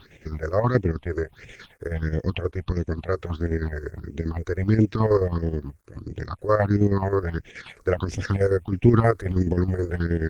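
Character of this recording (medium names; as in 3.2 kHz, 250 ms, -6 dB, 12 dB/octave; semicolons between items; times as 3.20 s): chopped level 9.4 Hz, depth 60%, duty 60%; a quantiser's noise floor 12-bit, dither none; phasing stages 6, 1.5 Hz, lowest notch 200–1200 Hz; Opus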